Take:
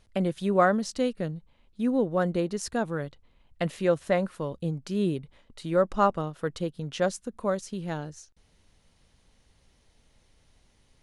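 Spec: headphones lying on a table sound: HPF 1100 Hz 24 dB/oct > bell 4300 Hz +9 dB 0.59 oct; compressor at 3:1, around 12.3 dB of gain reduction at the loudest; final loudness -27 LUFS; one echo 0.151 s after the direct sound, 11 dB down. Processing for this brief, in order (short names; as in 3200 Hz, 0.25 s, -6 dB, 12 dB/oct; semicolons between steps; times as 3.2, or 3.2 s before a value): compressor 3:1, threshold -34 dBFS; HPF 1100 Hz 24 dB/oct; bell 4300 Hz +9 dB 0.59 oct; echo 0.151 s -11 dB; gain +17 dB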